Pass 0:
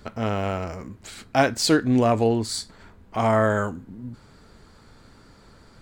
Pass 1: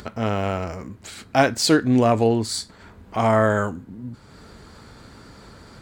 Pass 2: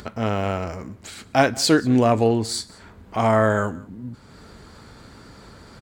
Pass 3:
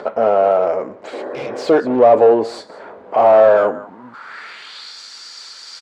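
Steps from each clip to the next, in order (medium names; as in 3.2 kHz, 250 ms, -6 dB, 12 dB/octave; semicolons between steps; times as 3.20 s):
high-pass 42 Hz; upward compressor, threshold -39 dBFS; trim +2 dB
delay 183 ms -23 dB
overdrive pedal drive 27 dB, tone 5.6 kHz, clips at -1 dBFS; band-pass sweep 550 Hz -> 5.4 kHz, 3.69–5.00 s; spectral replace 1.16–1.62 s, 220–2000 Hz after; trim +3.5 dB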